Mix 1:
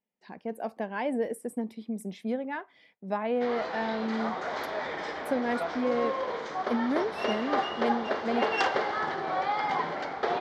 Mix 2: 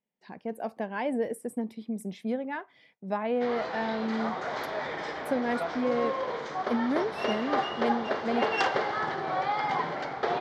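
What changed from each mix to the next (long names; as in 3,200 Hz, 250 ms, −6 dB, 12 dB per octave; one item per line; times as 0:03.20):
master: add parametric band 130 Hz +10 dB 0.36 octaves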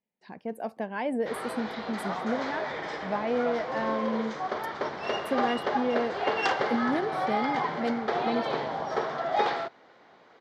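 background: entry −2.15 s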